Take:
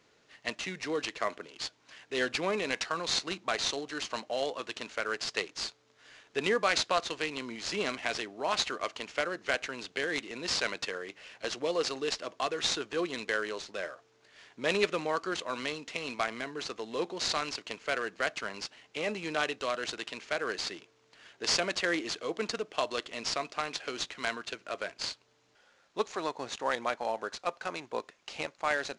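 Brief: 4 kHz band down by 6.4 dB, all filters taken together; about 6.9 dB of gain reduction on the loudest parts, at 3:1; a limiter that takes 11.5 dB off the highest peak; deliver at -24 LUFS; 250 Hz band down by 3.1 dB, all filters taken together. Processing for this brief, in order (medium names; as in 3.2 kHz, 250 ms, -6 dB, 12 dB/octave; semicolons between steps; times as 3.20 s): peaking EQ 250 Hz -4.5 dB; peaking EQ 4 kHz -8 dB; compression 3:1, threshold -34 dBFS; trim +17.5 dB; peak limiter -11.5 dBFS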